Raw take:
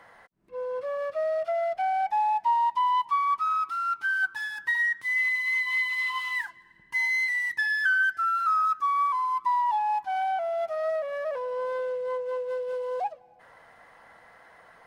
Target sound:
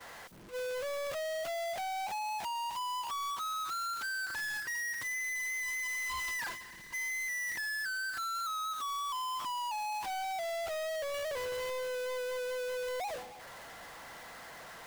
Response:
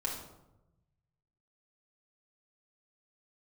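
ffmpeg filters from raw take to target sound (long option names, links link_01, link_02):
-af "aeval=exprs='val(0)+0.5*0.0282*sgn(val(0))':channel_layout=same,agate=range=-33dB:threshold=-29dB:ratio=3:detection=peak,acompressor=threshold=-26dB:ratio=6,asoftclip=type=tanh:threshold=-35.5dB"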